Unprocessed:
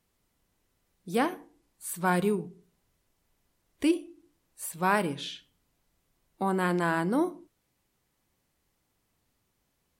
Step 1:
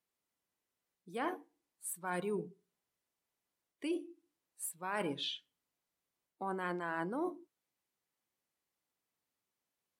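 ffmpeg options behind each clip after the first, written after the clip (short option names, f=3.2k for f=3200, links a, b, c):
-af "highpass=f=420:p=1,afftdn=nr=13:nf=-42,areverse,acompressor=threshold=-34dB:ratio=20,areverse,volume=1dB"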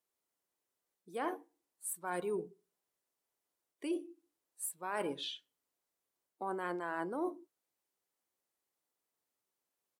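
-af "firequalizer=gain_entry='entry(170,0);entry(370,8);entry(2300,3);entry(8100,8)':delay=0.05:min_phase=1,volume=-6.5dB"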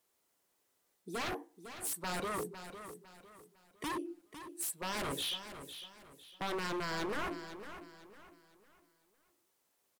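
-filter_complex "[0:a]asplit=2[a][b];[b]acompressor=threshold=-44dB:ratio=6,volume=-1dB[c];[a][c]amix=inputs=2:normalize=0,aeval=exprs='0.015*(abs(mod(val(0)/0.015+3,4)-2)-1)':c=same,aecho=1:1:504|1008|1512|2016:0.282|0.0958|0.0326|0.0111,volume=4.5dB"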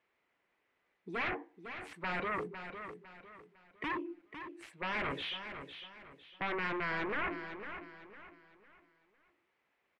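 -af "asoftclip=type=tanh:threshold=-33dB,lowpass=f=2.2k:t=q:w=2.7,volume=1dB"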